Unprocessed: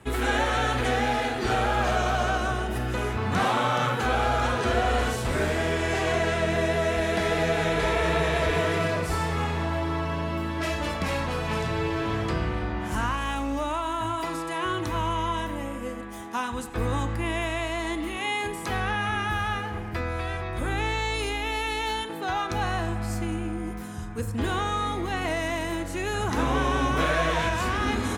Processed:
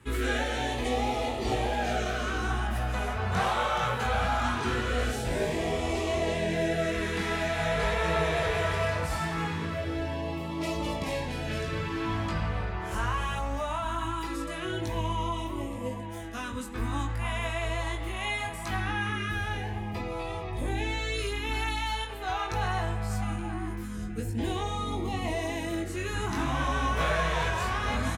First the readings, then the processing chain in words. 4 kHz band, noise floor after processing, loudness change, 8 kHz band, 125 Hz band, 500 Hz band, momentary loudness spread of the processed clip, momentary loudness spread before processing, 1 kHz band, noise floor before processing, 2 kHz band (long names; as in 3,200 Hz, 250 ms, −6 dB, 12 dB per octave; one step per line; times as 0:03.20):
−3.0 dB, −36 dBFS, −3.5 dB, −3.0 dB, −2.5 dB, −4.0 dB, 7 LU, 6 LU, −4.0 dB, −34 dBFS, −4.0 dB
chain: chorus effect 0.74 Hz, delay 18 ms, depth 3.4 ms
slap from a distant wall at 150 metres, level −8 dB
auto-filter notch sine 0.21 Hz 270–1,600 Hz